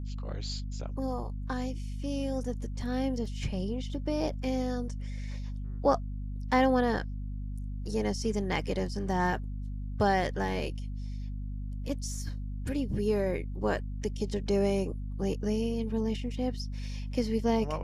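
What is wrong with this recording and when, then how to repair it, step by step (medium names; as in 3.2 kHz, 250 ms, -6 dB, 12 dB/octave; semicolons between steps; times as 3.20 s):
hum 50 Hz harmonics 5 -36 dBFS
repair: de-hum 50 Hz, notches 5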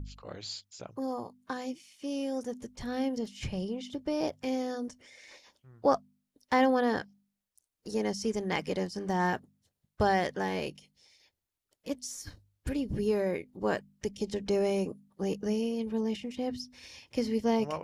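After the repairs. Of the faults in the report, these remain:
nothing left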